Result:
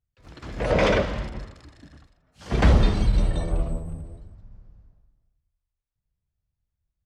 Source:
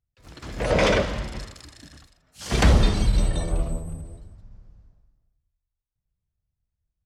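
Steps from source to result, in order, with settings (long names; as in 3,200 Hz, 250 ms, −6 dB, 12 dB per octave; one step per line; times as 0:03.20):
low-pass filter 3,200 Hz 6 dB per octave, from 0:01.29 1,300 Hz, from 0:02.63 2,800 Hz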